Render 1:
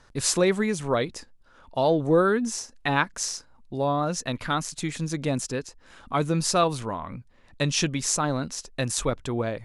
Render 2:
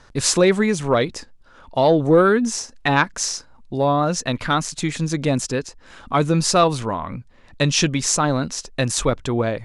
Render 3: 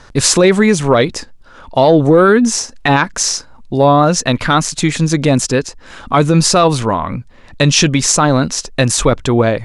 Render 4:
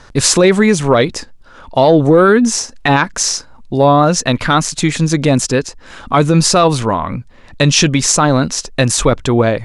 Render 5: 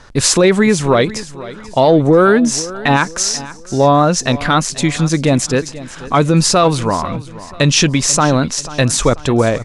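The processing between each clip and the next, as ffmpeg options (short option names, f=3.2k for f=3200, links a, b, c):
-af "acontrast=72,lowpass=9k"
-af "alimiter=limit=-10.5dB:level=0:latency=1:release=38,volume=9dB"
-af anull
-af "aecho=1:1:488|976|1464:0.141|0.0565|0.0226,volume=-1dB"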